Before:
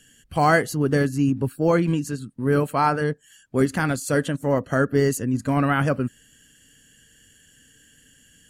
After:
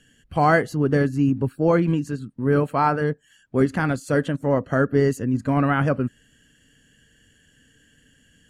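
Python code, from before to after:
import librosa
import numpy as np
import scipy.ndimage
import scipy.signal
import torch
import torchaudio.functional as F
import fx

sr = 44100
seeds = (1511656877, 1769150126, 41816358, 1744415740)

y = fx.lowpass(x, sr, hz=2300.0, slope=6)
y = y * 10.0 ** (1.0 / 20.0)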